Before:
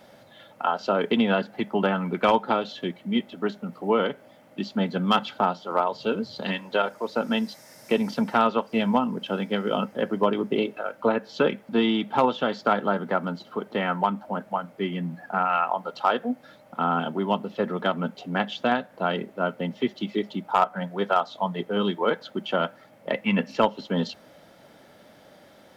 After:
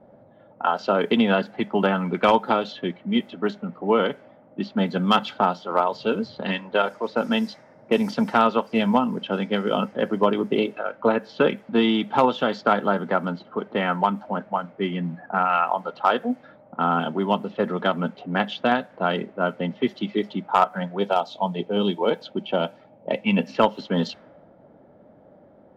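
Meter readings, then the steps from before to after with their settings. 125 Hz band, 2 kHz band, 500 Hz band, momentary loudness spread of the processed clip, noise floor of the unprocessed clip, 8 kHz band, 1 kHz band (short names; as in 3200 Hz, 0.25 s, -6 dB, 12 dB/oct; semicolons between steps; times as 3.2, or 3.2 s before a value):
+2.5 dB, +2.0 dB, +2.5 dB, 8 LU, -53 dBFS, n/a, +2.5 dB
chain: low-pass opened by the level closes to 630 Hz, open at -21 dBFS; spectral gain 20.99–23.47, 990–2200 Hz -8 dB; gain +2.5 dB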